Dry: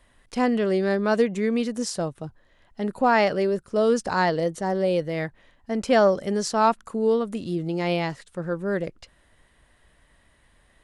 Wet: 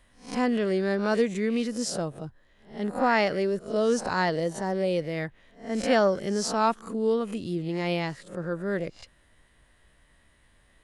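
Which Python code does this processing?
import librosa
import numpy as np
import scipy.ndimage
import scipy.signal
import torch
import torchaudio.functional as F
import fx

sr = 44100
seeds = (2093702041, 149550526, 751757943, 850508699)

y = fx.spec_swells(x, sr, rise_s=0.36)
y = fx.peak_eq(y, sr, hz=760.0, db=-2.5, octaves=1.4)
y = F.gain(torch.from_numpy(y), -2.5).numpy()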